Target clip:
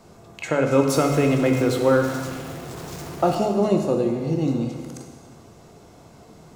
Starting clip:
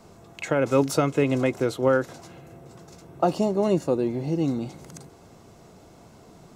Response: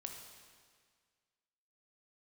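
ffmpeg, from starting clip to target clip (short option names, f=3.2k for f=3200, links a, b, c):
-filter_complex "[0:a]asettb=1/sr,asplit=3[a][b][c];[a]atrim=end=0.884[d];[b]atrim=start=0.88:end=3.35,asetpts=PTS-STARTPTS,afade=t=in:d=0.004:c=qsin,afade=t=out:st=2.466:d=0.004:c=qsin,aeval=exprs='val(0)+0.5*0.0188*sgn(val(0))':c=same[e];[c]atrim=start=3.346[f];[d][e]acrossfade=d=0.004:c1=hsin:c2=qsin[g];[g][f]acrossfade=d=0.004:c1=qsin:c2=hsin[h];[1:a]atrim=start_sample=2205,asetrate=48510,aresample=44100[i];[h][i]afir=irnorm=-1:irlink=0,volume=6.5dB"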